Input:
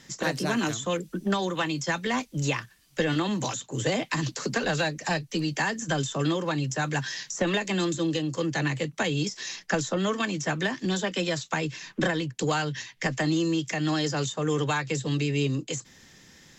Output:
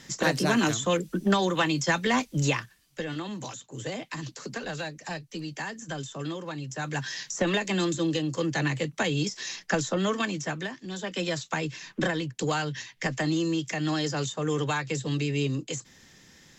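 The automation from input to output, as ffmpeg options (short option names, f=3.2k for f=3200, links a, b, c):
-af "volume=21.5dB,afade=t=out:st=2.36:d=0.65:silence=0.281838,afade=t=in:st=6.66:d=0.58:silence=0.398107,afade=t=out:st=10.19:d=0.66:silence=0.251189,afade=t=in:st=10.85:d=0.4:silence=0.298538"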